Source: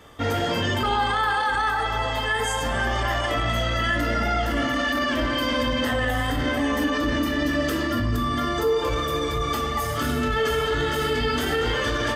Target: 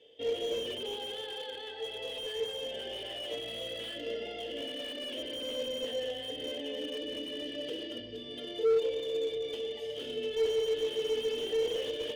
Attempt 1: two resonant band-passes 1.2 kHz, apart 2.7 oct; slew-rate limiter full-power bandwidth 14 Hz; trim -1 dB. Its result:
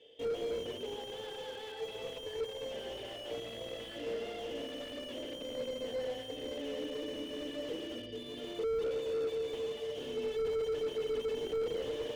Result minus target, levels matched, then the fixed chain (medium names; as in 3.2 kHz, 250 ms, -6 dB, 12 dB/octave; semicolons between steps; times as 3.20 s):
slew-rate limiter: distortion +9 dB
two resonant band-passes 1.2 kHz, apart 2.7 oct; slew-rate limiter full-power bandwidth 37 Hz; trim -1 dB